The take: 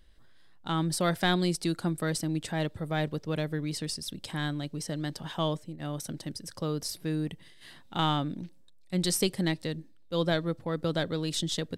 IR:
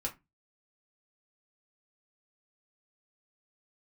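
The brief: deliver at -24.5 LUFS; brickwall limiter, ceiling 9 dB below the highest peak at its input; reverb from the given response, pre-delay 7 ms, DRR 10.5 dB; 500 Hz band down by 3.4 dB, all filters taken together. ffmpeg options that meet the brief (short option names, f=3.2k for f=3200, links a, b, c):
-filter_complex "[0:a]equalizer=f=500:t=o:g=-4.5,alimiter=limit=-24dB:level=0:latency=1,asplit=2[a][b];[1:a]atrim=start_sample=2205,adelay=7[c];[b][c]afir=irnorm=-1:irlink=0,volume=-12dB[d];[a][d]amix=inputs=2:normalize=0,volume=10dB"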